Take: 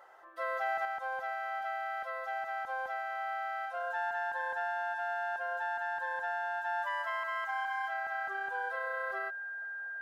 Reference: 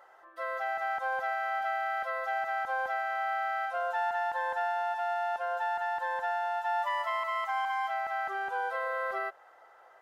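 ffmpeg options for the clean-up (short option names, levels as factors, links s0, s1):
-af "bandreject=f=1600:w=30,asetnsamples=n=441:p=0,asendcmd='0.85 volume volume 5dB',volume=1"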